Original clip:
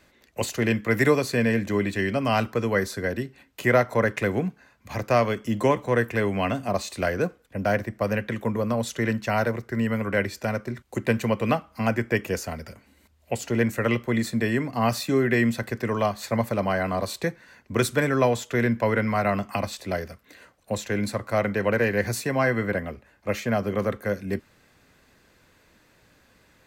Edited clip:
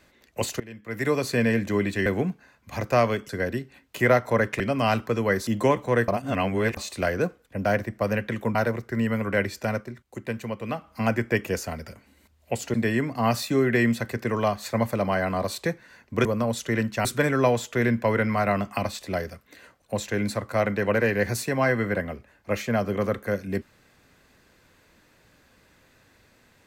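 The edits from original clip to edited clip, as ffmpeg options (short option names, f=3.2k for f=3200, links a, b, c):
-filter_complex "[0:a]asplit=14[a][b][c][d][e][f][g][h][i][j][k][l][m][n];[a]atrim=end=0.6,asetpts=PTS-STARTPTS,afade=t=out:st=0.596:d=0.004:c=hsin:silence=0.0891251[o];[b]atrim=start=0.6:end=2.062,asetpts=PTS-STARTPTS,afade=t=in:d=0.67:c=qua:silence=0.0891251[p];[c]atrim=start=4.238:end=5.472[q];[d]atrim=start=2.928:end=4.242[r];[e]atrim=start=2.058:end=2.932[s];[f]atrim=start=5.468:end=6.082[t];[g]atrim=start=6.078:end=6.772,asetpts=PTS-STARTPTS,areverse[u];[h]atrim=start=6.768:end=8.552[v];[i]atrim=start=9.348:end=10.78,asetpts=PTS-STARTPTS,afade=t=out:st=1.232:d=0.2:c=qua:silence=0.398107[w];[j]atrim=start=10.78:end=11.49,asetpts=PTS-STARTPTS,volume=-8dB[x];[k]atrim=start=11.49:end=13.542,asetpts=PTS-STARTPTS,afade=t=in:d=0.2:c=qua:silence=0.398107[y];[l]atrim=start=14.318:end=17.832[z];[m]atrim=start=8.548:end=9.352[aa];[n]atrim=start=17.828[ab];[o][p]concat=n=2:v=0:a=1[ac];[ac][q]acrossfade=d=0.004:c1=hsin:c2=hsin[ad];[ad][r]acrossfade=d=0.004:c1=hsin:c2=hsin[ae];[ae][s]acrossfade=d=0.004:c1=hsin:c2=hsin[af];[af][t]acrossfade=d=0.004:c1=hsin:c2=hsin[ag];[ag][u]acrossfade=d=0.004:c1=hsin:c2=hsin[ah];[ah][v]acrossfade=d=0.004:c1=hsin:c2=hsin[ai];[w][x][y]concat=n=3:v=0:a=1[aj];[ai][aj]acrossfade=d=0.004:c1=hsin:c2=hsin[ak];[ak][z]acrossfade=d=0.004:c1=hsin:c2=hsin[al];[al][aa]acrossfade=d=0.004:c1=hsin:c2=hsin[am];[am][ab]acrossfade=d=0.004:c1=hsin:c2=hsin"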